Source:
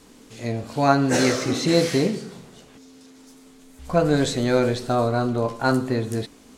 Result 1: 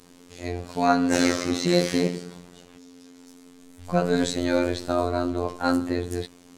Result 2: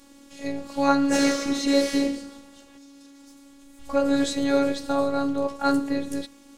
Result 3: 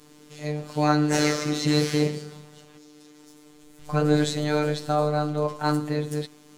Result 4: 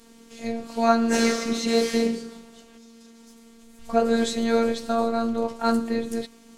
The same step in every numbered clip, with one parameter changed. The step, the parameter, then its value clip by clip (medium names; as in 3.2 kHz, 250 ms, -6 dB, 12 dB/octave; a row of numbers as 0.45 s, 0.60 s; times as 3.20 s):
robot voice, frequency: 88 Hz, 280 Hz, 150 Hz, 230 Hz